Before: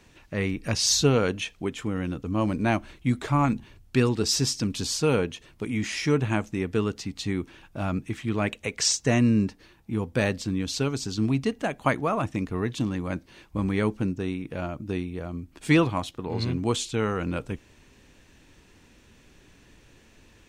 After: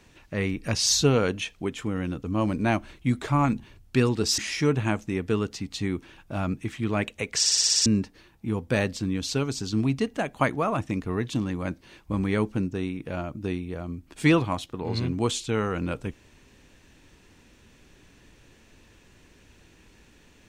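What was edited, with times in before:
4.38–5.83 cut
8.83 stutter in place 0.06 s, 8 plays

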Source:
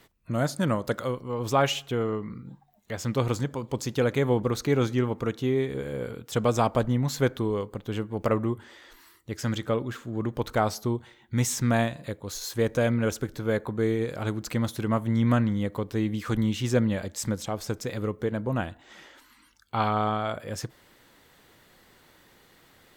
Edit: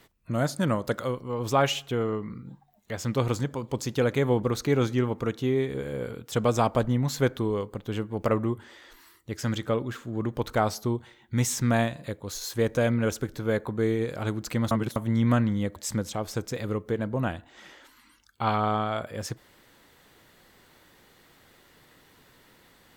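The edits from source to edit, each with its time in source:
14.71–14.96 reverse
15.76–17.09 cut

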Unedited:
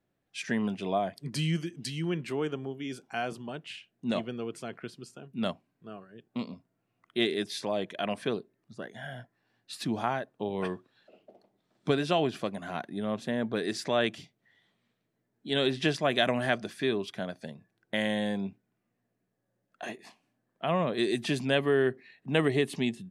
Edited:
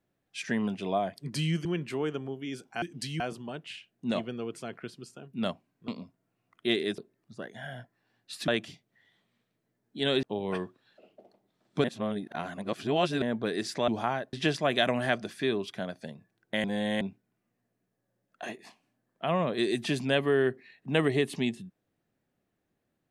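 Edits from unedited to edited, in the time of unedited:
1.65–2.03 move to 3.2
5.88–6.39 cut
7.49–8.38 cut
9.88–10.33 swap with 13.98–15.73
11.94–13.32 reverse
18.04–18.41 reverse

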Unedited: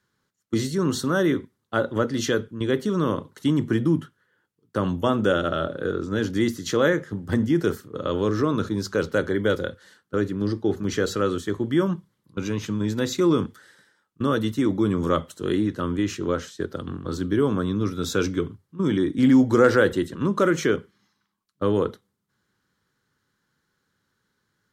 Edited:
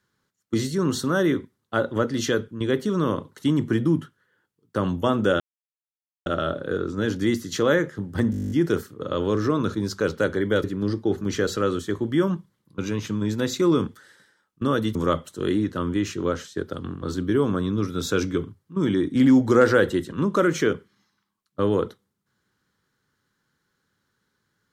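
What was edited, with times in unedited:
5.4 insert silence 0.86 s
7.45 stutter 0.02 s, 11 plays
9.58–10.23 cut
14.54–14.98 cut

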